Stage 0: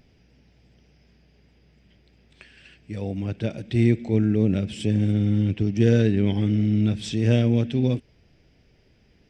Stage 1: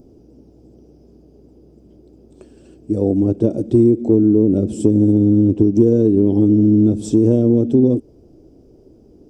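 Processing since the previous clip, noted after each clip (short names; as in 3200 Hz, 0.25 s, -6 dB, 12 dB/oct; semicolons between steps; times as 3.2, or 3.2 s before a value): EQ curve 180 Hz 0 dB, 320 Hz +14 dB, 1300 Hz -9 dB, 1900 Hz -28 dB, 4900 Hz -12 dB, 7300 Hz 0 dB; compressor 6:1, threshold -17 dBFS, peak gain reduction 10 dB; gain +7.5 dB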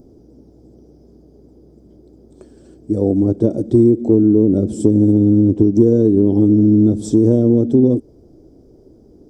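bell 2700 Hz -14 dB 0.25 oct; gain +1 dB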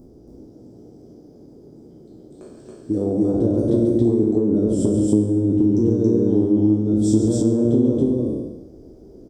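spectral trails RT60 0.96 s; compressor, threshold -14 dBFS, peak gain reduction 8.5 dB; loudspeakers at several distances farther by 12 m -11 dB, 48 m -8 dB, 95 m 0 dB; gain -3.5 dB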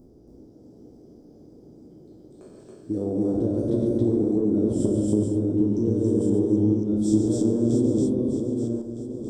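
regenerating reverse delay 0.63 s, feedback 43%, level -5 dB; gain -5.5 dB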